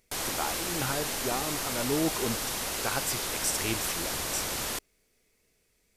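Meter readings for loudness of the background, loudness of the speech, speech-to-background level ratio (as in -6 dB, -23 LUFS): -31.0 LUFS, -34.0 LUFS, -3.0 dB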